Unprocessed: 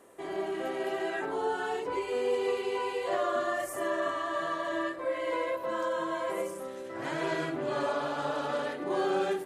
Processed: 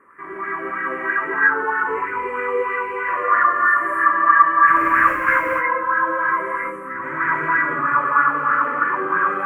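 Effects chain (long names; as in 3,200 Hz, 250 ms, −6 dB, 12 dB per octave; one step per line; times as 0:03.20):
0:04.67–0:05.33: each half-wave held at its own peak
drawn EQ curve 270 Hz 0 dB, 720 Hz −17 dB, 1,100 Hz +12 dB, 2,200 Hz +7 dB, 3,700 Hz −29 dB, 10,000 Hz −14 dB
reverb whose tail is shaped and stops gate 310 ms rising, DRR −4.5 dB
auto-filter bell 3.1 Hz 430–1,800 Hz +10 dB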